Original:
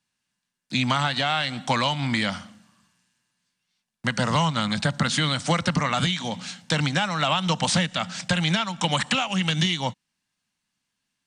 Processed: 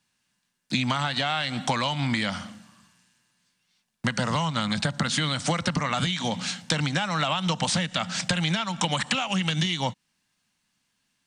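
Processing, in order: compression, threshold -28 dBFS, peak gain reduction 10.5 dB; trim +5.5 dB

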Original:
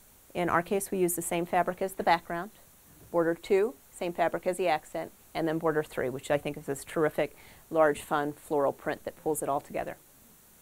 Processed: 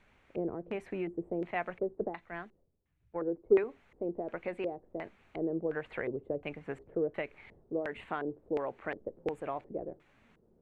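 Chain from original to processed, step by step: compression 6:1, threshold -27 dBFS, peak gain reduction 9.5 dB; LFO low-pass square 1.4 Hz 430–2300 Hz; 1.51–3.64 s: three bands expanded up and down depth 100%; trim -5.5 dB

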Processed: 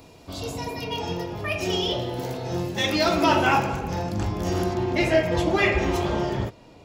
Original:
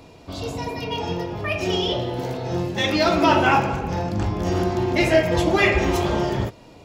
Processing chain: treble shelf 6.9 kHz +10 dB, from 4.74 s -3.5 dB; trim -3 dB

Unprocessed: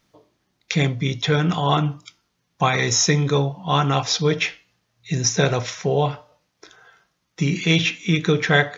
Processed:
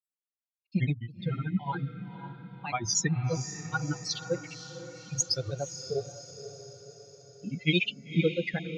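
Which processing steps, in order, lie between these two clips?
expander on every frequency bin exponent 3; granulator, grains 14 per s, spray 76 ms, pitch spread up and down by 3 st; echo that smears into a reverb 521 ms, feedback 54%, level -11 dB; trim -1.5 dB

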